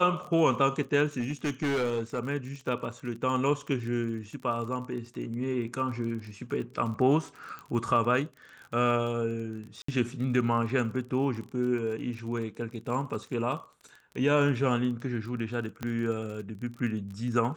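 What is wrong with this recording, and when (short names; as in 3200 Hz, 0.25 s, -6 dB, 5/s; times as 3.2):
crackle 30/s -37 dBFS
1.2–2.19 clipped -25 dBFS
7.59 pop -27 dBFS
9.82–9.88 gap 64 ms
15.83 pop -19 dBFS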